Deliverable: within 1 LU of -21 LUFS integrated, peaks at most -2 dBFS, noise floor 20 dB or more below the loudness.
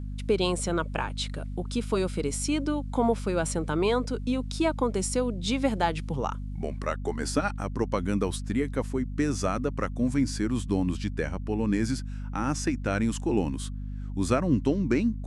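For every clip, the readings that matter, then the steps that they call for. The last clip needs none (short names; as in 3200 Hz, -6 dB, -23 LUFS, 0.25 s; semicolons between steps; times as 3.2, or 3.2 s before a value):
hum 50 Hz; harmonics up to 250 Hz; hum level -32 dBFS; loudness -28.5 LUFS; peak -9.5 dBFS; loudness target -21.0 LUFS
-> de-hum 50 Hz, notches 5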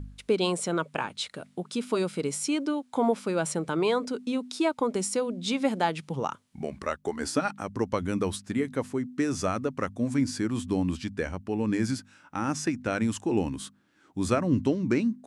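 hum none; loudness -29.0 LUFS; peak -10.5 dBFS; loudness target -21.0 LUFS
-> gain +8 dB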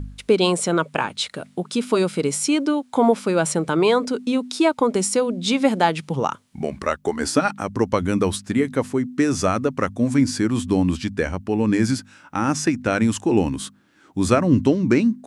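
loudness -21.0 LUFS; peak -2.5 dBFS; noise floor -54 dBFS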